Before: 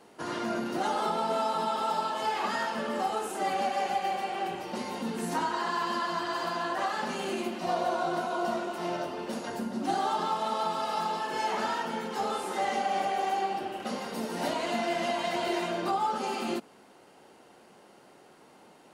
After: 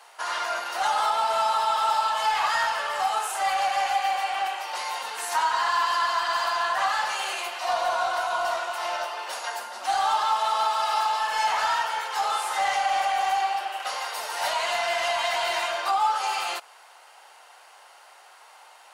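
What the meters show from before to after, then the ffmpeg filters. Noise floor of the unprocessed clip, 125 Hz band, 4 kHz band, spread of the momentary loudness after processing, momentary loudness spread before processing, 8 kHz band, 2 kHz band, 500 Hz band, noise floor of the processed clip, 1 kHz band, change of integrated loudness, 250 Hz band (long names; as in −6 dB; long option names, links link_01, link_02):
−56 dBFS, below −15 dB, +8.5 dB, 7 LU, 6 LU, +8.5 dB, +8.5 dB, −0.5 dB, −51 dBFS, +6.5 dB, +5.5 dB, below −20 dB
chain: -filter_complex "[0:a]highpass=frequency=770:width=0.5412,highpass=frequency=770:width=1.3066,asplit=2[link_01][link_02];[link_02]asoftclip=type=hard:threshold=-34dB,volume=-7dB[link_03];[link_01][link_03]amix=inputs=2:normalize=0,volume=6dB"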